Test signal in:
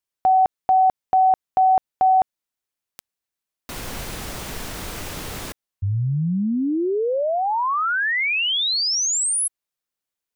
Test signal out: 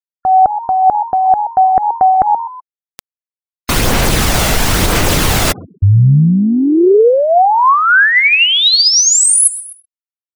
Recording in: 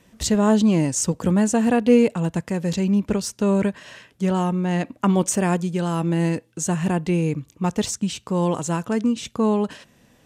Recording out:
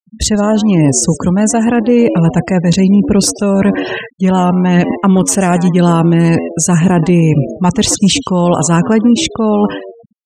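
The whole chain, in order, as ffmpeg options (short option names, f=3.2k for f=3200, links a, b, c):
-filter_complex "[0:a]asplit=2[a][b];[b]asplit=3[c][d][e];[c]adelay=127,afreqshift=86,volume=-17.5dB[f];[d]adelay=254,afreqshift=172,volume=-25.2dB[g];[e]adelay=381,afreqshift=258,volume=-33dB[h];[f][g][h]amix=inputs=3:normalize=0[i];[a][i]amix=inputs=2:normalize=0,dynaudnorm=f=110:g=31:m=7.5dB,afftfilt=real='re*gte(hypot(re,im),0.0178)':imag='im*gte(hypot(re,im),0.0178)':win_size=1024:overlap=0.75,areverse,acompressor=threshold=-25dB:ratio=12:attack=71:release=171:knee=6:detection=peak,areverse,aphaser=in_gain=1:out_gain=1:delay=1.5:decay=0.3:speed=1:type=sinusoidal,alimiter=level_in=15.5dB:limit=-1dB:release=50:level=0:latency=1,volume=-1dB"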